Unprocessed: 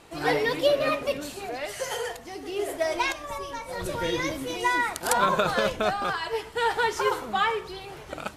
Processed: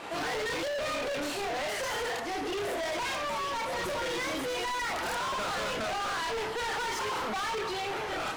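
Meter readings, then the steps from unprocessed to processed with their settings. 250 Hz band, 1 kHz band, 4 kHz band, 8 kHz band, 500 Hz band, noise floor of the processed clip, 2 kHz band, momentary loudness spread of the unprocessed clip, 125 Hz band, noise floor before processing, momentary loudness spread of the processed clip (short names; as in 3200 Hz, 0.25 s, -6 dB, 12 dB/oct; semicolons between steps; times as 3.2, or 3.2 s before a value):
-5.0 dB, -5.0 dB, -2.0 dB, -3.0 dB, -6.5 dB, -35 dBFS, -4.0 dB, 11 LU, -7.0 dB, -43 dBFS, 1 LU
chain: chorus voices 2, 0.4 Hz, delay 30 ms, depth 2.8 ms; overdrive pedal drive 31 dB, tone 1900 Hz, clips at -12.5 dBFS; hard clip -26.5 dBFS, distortion -9 dB; gain -5 dB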